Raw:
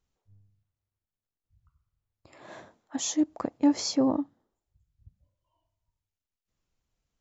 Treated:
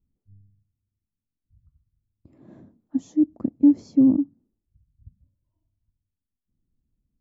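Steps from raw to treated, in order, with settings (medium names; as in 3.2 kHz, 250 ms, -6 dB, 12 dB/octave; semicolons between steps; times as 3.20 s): FFT filter 130 Hz 0 dB, 250 Hz +4 dB, 490 Hz -14 dB, 830 Hz -22 dB, 3 kHz -29 dB; trim +7 dB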